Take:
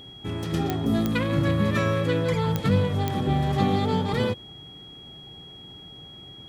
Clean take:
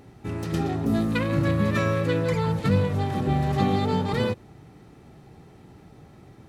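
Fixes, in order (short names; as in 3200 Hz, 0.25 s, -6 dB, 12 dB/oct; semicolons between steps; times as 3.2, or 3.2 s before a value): de-click; notch 3300 Hz, Q 30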